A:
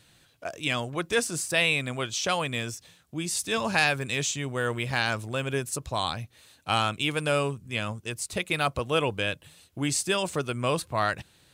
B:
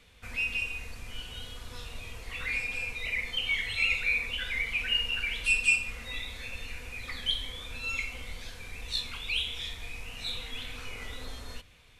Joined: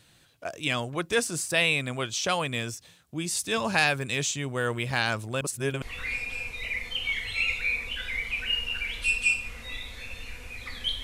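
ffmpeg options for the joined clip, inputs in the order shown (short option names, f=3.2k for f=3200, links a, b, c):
-filter_complex "[0:a]apad=whole_dur=11.03,atrim=end=11.03,asplit=2[a][b];[a]atrim=end=5.412[c];[b]atrim=start=5.408:end=5.822,asetpts=PTS-STARTPTS,areverse[d];[1:a]atrim=start=2.238:end=7.45[e];[c][d]acrossfade=d=0.004:c1=hsin:c2=hsin[f];[f][e]acrossfade=d=0.004:c1=hsin:c2=hsin"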